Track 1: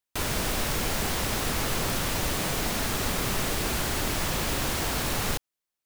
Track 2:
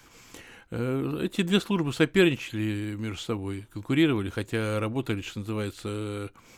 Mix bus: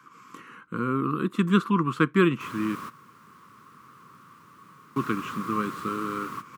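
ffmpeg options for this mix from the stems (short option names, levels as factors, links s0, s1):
-filter_complex "[0:a]adelay=2250,volume=0.316[s0];[1:a]equalizer=f=99:t=o:w=0.38:g=-14,volume=1.26,asplit=3[s1][s2][s3];[s1]atrim=end=2.75,asetpts=PTS-STARTPTS,afade=t=out:st=2.746:d=0.004:c=hsin[s4];[s2]atrim=start=2.75:end=4.96,asetpts=PTS-STARTPTS,volume=0[s5];[s3]atrim=start=4.96,asetpts=PTS-STARTPTS,afade=t=in:d=0.004:c=hsin[s6];[s4][s5][s6]concat=n=3:v=0:a=1,asplit=2[s7][s8];[s8]apad=whole_len=357503[s9];[s0][s9]sidechaingate=range=0.178:threshold=0.00398:ratio=16:detection=peak[s10];[s10][s7]amix=inputs=2:normalize=0,highpass=f=130:w=0.5412,highpass=f=130:w=1.3066,dynaudnorm=f=120:g=5:m=1.41,firequalizer=gain_entry='entry(190,0);entry(450,-7);entry(740,-24);entry(1100,13);entry(1700,-5);entry(3700,-13)':delay=0.05:min_phase=1"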